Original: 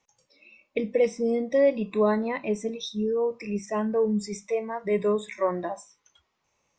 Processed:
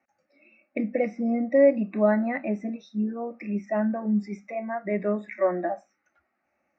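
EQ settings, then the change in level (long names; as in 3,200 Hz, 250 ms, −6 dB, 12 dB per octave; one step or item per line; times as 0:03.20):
band-pass filter 120–2,900 Hz
high-frequency loss of the air 110 metres
phaser with its sweep stopped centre 670 Hz, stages 8
+5.5 dB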